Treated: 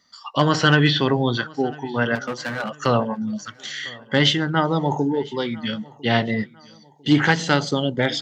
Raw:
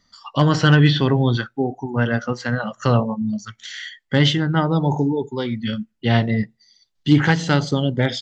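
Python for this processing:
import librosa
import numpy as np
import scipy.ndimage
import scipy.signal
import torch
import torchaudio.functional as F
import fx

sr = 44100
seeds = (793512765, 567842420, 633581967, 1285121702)

p1 = fx.overload_stage(x, sr, gain_db=22.0, at=(2.15, 2.86))
p2 = fx.highpass(p1, sr, hz=320.0, slope=6)
p3 = p2 + fx.echo_feedback(p2, sr, ms=1000, feedback_pct=43, wet_db=-23.5, dry=0)
y = F.gain(torch.from_numpy(p3), 2.0).numpy()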